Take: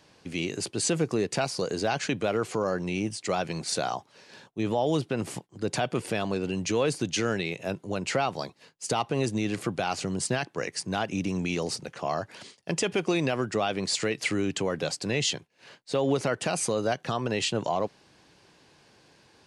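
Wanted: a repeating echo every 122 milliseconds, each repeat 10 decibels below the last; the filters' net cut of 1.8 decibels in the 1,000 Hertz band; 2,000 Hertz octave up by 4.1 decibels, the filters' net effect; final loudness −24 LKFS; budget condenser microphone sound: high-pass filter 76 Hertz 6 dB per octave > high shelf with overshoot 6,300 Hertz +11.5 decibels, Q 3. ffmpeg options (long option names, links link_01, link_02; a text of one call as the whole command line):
ffmpeg -i in.wav -af "highpass=frequency=76:poles=1,equalizer=frequency=1000:width_type=o:gain=-4.5,equalizer=frequency=2000:width_type=o:gain=8.5,highshelf=frequency=6300:width_type=q:width=3:gain=11.5,aecho=1:1:122|244|366|488:0.316|0.101|0.0324|0.0104,volume=-1dB" out.wav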